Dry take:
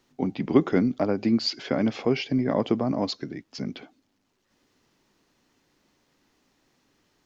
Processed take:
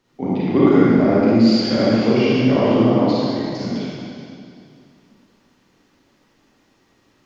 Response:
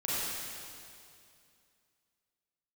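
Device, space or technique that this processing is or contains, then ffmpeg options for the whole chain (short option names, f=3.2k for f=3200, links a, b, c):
swimming-pool hall: -filter_complex "[0:a]asettb=1/sr,asplit=3[a][b][c];[a]atrim=end=2.904[d];[b]atrim=start=2.9:end=3.47,asetpts=PTS-STARTPTS,afade=t=in:d=0.004:c=qsin,afade=t=out:st=0.566:d=0.004:c=qsin,lowpass=5.2k[e];[c]atrim=start=3.466[f];[d][e]acrossfade=d=0.004:c1=hsin:c2=qsin[g];[g][f]acrossfade=d=0.004:c1=qsin:c2=hsin[h];[1:a]atrim=start_sample=2205[i];[h][i]afir=irnorm=-1:irlink=0,highshelf=f=4.2k:g=-6,volume=2dB"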